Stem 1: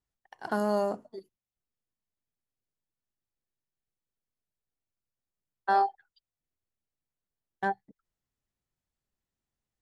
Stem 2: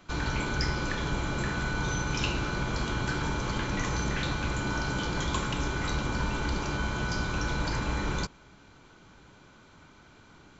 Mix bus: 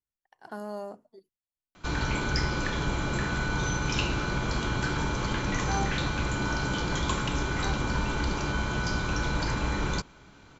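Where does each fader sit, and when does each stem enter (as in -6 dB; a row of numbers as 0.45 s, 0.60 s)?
-9.5 dB, +1.5 dB; 0.00 s, 1.75 s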